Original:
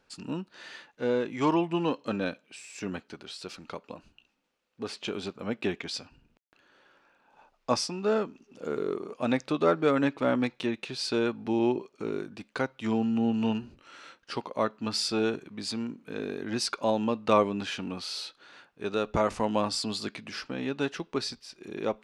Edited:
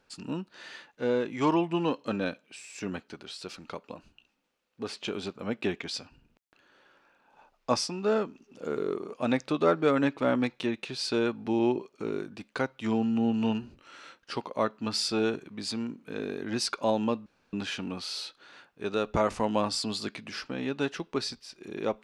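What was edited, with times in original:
17.26–17.53 room tone

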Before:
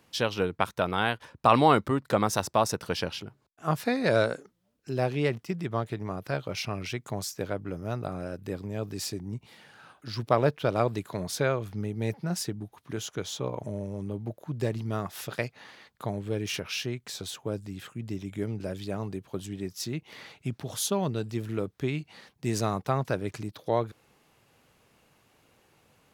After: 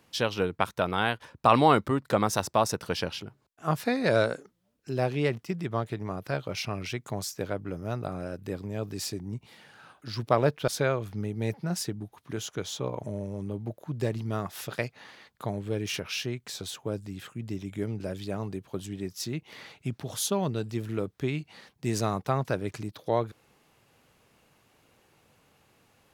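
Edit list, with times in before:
10.68–11.28 cut

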